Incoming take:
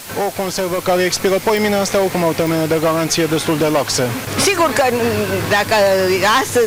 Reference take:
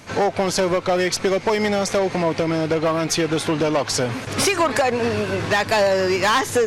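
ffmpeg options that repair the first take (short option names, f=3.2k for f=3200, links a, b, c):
-af "adeclick=t=4,afwtdn=0.025,asetnsamples=n=441:p=0,asendcmd='0.78 volume volume -4.5dB',volume=0dB"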